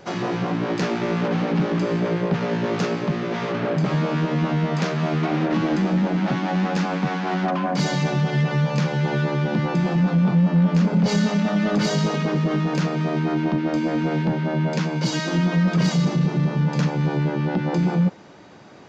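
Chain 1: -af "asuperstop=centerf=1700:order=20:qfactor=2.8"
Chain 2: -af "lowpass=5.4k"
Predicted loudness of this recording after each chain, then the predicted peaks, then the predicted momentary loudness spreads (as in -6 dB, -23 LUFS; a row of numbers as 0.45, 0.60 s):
-22.0, -22.0 LUFS; -11.0, -11.5 dBFS; 5, 5 LU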